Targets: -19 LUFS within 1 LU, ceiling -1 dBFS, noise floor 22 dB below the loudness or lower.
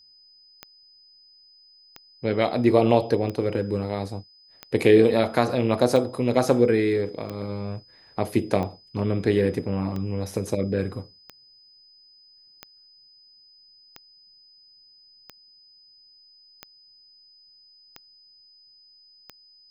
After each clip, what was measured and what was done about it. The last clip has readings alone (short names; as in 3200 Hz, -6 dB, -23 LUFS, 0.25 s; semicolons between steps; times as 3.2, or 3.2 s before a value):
clicks 15; steady tone 5000 Hz; tone level -52 dBFS; loudness -23.5 LUFS; peak -3.0 dBFS; loudness target -19.0 LUFS
-> de-click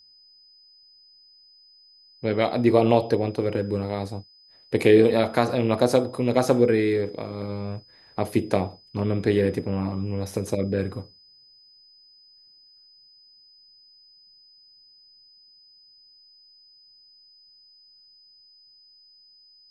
clicks 0; steady tone 5000 Hz; tone level -52 dBFS
-> notch 5000 Hz, Q 30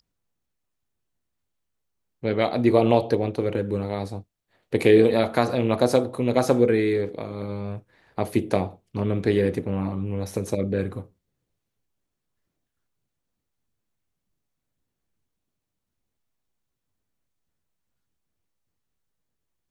steady tone none; loudness -23.5 LUFS; peak -3.0 dBFS; loudness target -19.0 LUFS
-> gain +4.5 dB; limiter -1 dBFS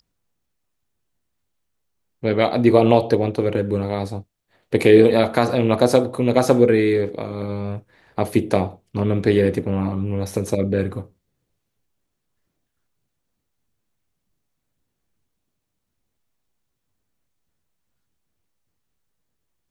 loudness -19.0 LUFS; peak -1.0 dBFS; noise floor -77 dBFS